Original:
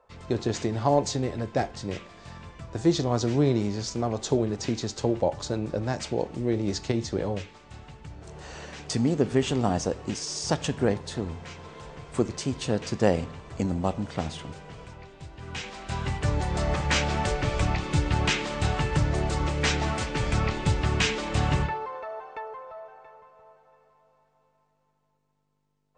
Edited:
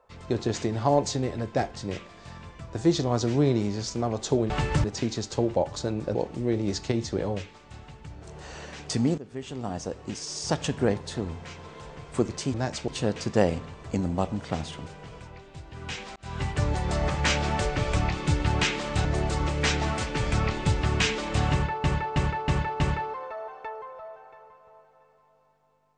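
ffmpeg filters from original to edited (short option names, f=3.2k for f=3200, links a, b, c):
-filter_complex "[0:a]asplit=13[a][b][c][d][e][f][g][h][i][j][k][l][m];[a]atrim=end=4.502[n];[b]atrim=start=18.708:end=19.052[o];[c]atrim=start=4.498:end=5.812[p];[d]atrim=start=6.148:end=9.18,asetpts=PTS-STARTPTS,afade=t=out:st=3.028:d=0.004:c=hsin:silence=0.1[q];[e]atrim=start=9.18:end=12.542,asetpts=PTS-STARTPTS,afade=t=in:d=1.48:silence=0.1[r];[f]atrim=start=5.808:end=6.152[s];[g]atrim=start=12.538:end=15.82,asetpts=PTS-STARTPTS,afade=t=out:st=3.278:d=0.004:c=hsin[t];[h]atrim=start=15.82:end=18.712,asetpts=PTS-STARTPTS,afade=t=in:d=0.27[u];[i]atrim=start=19.048:end=21.842[v];[j]atrim=start=21.518:end=21.842[w];[k]atrim=start=21.518:end=21.842[x];[l]atrim=start=21.518:end=21.842[y];[m]atrim=start=21.518[z];[n][o]acrossfade=d=0.004:c1=hsin:c2=hsin[aa];[aa][p]acrossfade=d=0.004:c1=hsin:c2=hsin[ab];[q][r]concat=n=2:v=0:a=1[ac];[ab][ac]acrossfade=d=0.004:c1=hsin:c2=hsin[ad];[ad][s]acrossfade=d=0.004:c1=hsin:c2=hsin[ae];[t][u]concat=n=2:v=0:a=1[af];[ae][af]acrossfade=d=0.004:c1=hsin:c2=hsin[ag];[ag][v]acrossfade=d=0.004:c1=hsin:c2=hsin[ah];[ah][w]acrossfade=d=0.004:c1=hsin:c2=hsin[ai];[ai][x]acrossfade=d=0.004:c1=hsin:c2=hsin[aj];[aj][y]acrossfade=d=0.004:c1=hsin:c2=hsin[ak];[ak][z]acrossfade=d=0.004:c1=hsin:c2=hsin"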